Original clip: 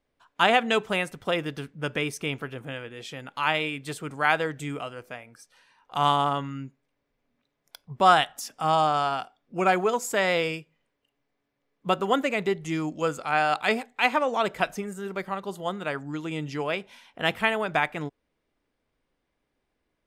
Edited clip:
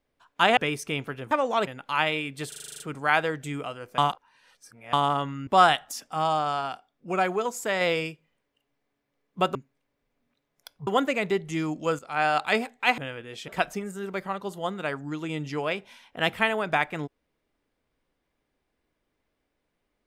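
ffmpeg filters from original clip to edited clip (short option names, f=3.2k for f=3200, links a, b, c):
-filter_complex "[0:a]asplit=22[a][b][c][d][e][f][g][h][i][j][k][l][m][n][o][p][q][r][s][t][u][v];[a]atrim=end=0.572[w];[b]atrim=start=1.908:end=2.652[x];[c]atrim=start=14.138:end=14.502[y];[d]atrim=start=3.148:end=4.002[z];[e]atrim=start=3.958:end=4.002[aa];[f]atrim=start=3.958:end=4.002[ab];[g]atrim=start=3.958:end=4.002[ac];[h]atrim=start=3.958:end=4.002[ad];[i]atrim=start=3.958:end=4.002[ae];[j]atrim=start=3.958:end=4.002[af];[k]atrim=start=3.958:end=4.002[ag];[l]atrim=start=3.958:end=5.142[ah];[m]atrim=start=5.138:end=6.092,asetpts=PTS-STARTPTS,areverse[ai];[n]atrim=start=6.088:end=6.632[aj];[o]atrim=start=7.948:end=8.562[ak];[p]atrim=start=8.558:end=10.292,asetpts=PTS-STARTPTS,volume=-3dB[al];[q]atrim=start=10.288:end=12.032[am];[r]atrim=start=6.628:end=7.952[an];[s]atrim=start=12.028:end=13.15,asetpts=PTS-STARTPTS,afade=t=out:st=1.118:d=0.004:c=hsin:silence=0.211349[ao];[t]atrim=start=13.15:end=14.142,asetpts=PTS-STARTPTS,afade=t=in:d=0.27:silence=0.211349[ap];[u]atrim=start=2.648:end=3.152[aq];[v]atrim=start=14.498[ar];[w][x]acrossfade=d=0.004:c1=hsin:c2=hsin[as];[as][y]acrossfade=d=0.004:c1=hsin:c2=hsin[at];[at][z]acrossfade=d=0.004:c1=hsin:c2=hsin[au];[au][aa]acrossfade=d=0.004:c1=hsin:c2=hsin[av];[av][ab]acrossfade=d=0.004:c1=hsin:c2=hsin[aw];[aw][ac]acrossfade=d=0.004:c1=hsin:c2=hsin[ax];[ax][ad]acrossfade=d=0.004:c1=hsin:c2=hsin[ay];[ay][ae]acrossfade=d=0.004:c1=hsin:c2=hsin[az];[az][af]acrossfade=d=0.004:c1=hsin:c2=hsin[ba];[ba][ag]acrossfade=d=0.004:c1=hsin:c2=hsin[bb];[bb][ah]acrossfade=d=0.004:c1=hsin:c2=hsin[bc];[bc][ai]acrossfade=d=0.004:c1=hsin:c2=hsin[bd];[bd][aj]acrossfade=d=0.004:c1=hsin:c2=hsin[be];[be][ak]acrossfade=d=0.004:c1=hsin:c2=hsin[bf];[bf][al]acrossfade=d=0.004:c1=hsin:c2=hsin[bg];[bg][am]acrossfade=d=0.004:c1=hsin:c2=hsin[bh];[bh][an]acrossfade=d=0.004:c1=hsin:c2=hsin[bi];[ao][ap]concat=n=2:v=0:a=1[bj];[bi][bj]acrossfade=d=0.004:c1=hsin:c2=hsin[bk];[bk][aq]acrossfade=d=0.004:c1=hsin:c2=hsin[bl];[bl][ar]acrossfade=d=0.004:c1=hsin:c2=hsin"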